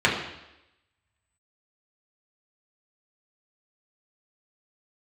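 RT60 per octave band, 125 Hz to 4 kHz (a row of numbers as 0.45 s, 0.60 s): 0.80 s, 0.90 s, 0.90 s, 0.90 s, 0.90 s, 0.90 s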